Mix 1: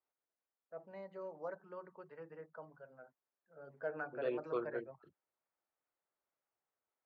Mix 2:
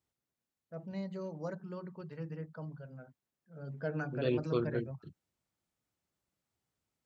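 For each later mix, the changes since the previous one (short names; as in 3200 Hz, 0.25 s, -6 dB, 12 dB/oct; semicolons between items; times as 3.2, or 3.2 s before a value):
master: remove three-band isolator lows -23 dB, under 410 Hz, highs -21 dB, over 2100 Hz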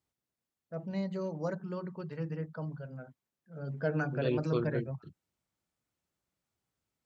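first voice +5.0 dB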